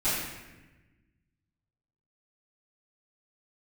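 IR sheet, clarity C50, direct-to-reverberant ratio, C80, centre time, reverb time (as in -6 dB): -1.0 dB, -17.5 dB, 1.5 dB, 85 ms, 1.1 s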